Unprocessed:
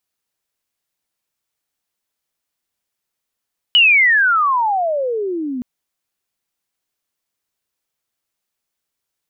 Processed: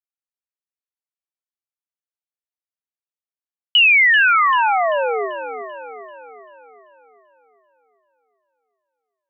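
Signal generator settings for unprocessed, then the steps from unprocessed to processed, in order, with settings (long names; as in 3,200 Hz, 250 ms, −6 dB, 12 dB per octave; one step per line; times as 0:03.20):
glide logarithmic 3,000 Hz → 240 Hz −7 dBFS → −21 dBFS 1.87 s
noise gate with hold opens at −14 dBFS
bass and treble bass −14 dB, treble −6 dB
on a send: feedback echo with a low-pass in the loop 389 ms, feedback 53%, low-pass 4,700 Hz, level −10 dB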